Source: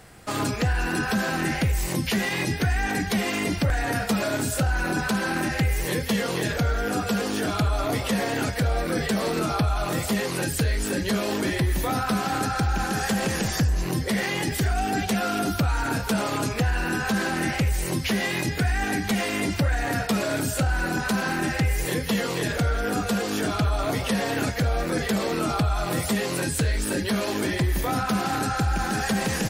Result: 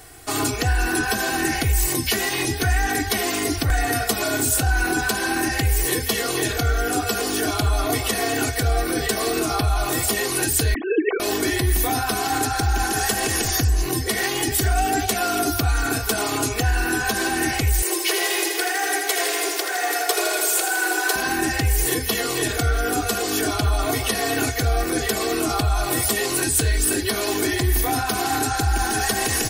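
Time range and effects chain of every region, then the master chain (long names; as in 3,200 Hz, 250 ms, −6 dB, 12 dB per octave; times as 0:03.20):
0:10.74–0:11.20: three sine waves on the formant tracks + high-frequency loss of the air 330 metres
0:17.82–0:21.16: linear-phase brick-wall high-pass 320 Hz + feedback echo at a low word length 81 ms, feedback 80%, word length 9 bits, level −7 dB
whole clip: high-shelf EQ 6,200 Hz +11.5 dB; comb filter 2.7 ms, depth 87%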